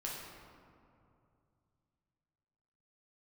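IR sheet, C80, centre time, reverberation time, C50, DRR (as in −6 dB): 2.0 dB, 100 ms, 2.6 s, 0.0 dB, −4.5 dB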